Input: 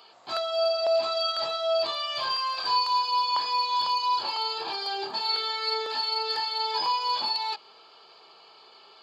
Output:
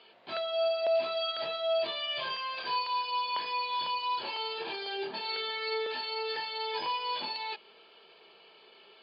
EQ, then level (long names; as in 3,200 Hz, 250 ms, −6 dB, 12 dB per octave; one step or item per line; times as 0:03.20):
loudspeaker in its box 180–3,000 Hz, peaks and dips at 300 Hz −5 dB, 790 Hz −6 dB, 1,200 Hz −9 dB
parametric band 970 Hz −7.5 dB 2.2 octaves
+5.0 dB